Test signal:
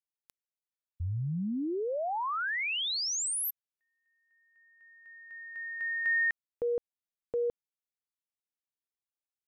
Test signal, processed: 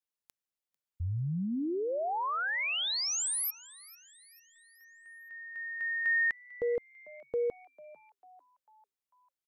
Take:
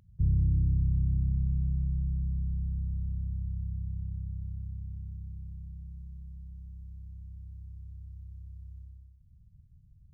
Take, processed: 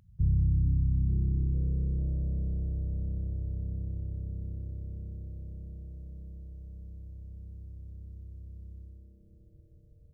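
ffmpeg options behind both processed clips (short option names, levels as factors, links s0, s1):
-filter_complex "[0:a]asplit=5[s0][s1][s2][s3][s4];[s1]adelay=446,afreqshift=130,volume=0.0891[s5];[s2]adelay=892,afreqshift=260,volume=0.0447[s6];[s3]adelay=1338,afreqshift=390,volume=0.0224[s7];[s4]adelay=1784,afreqshift=520,volume=0.0111[s8];[s0][s5][s6][s7][s8]amix=inputs=5:normalize=0"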